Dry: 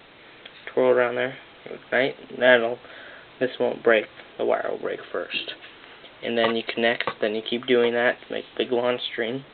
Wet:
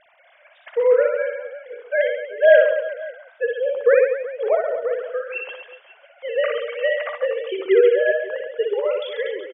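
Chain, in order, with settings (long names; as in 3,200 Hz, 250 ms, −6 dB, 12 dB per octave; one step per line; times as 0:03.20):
three sine waves on the formant tracks
high-frequency loss of the air 220 metres
reverse bouncing-ball delay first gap 60 ms, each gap 1.3×, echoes 5
level +2.5 dB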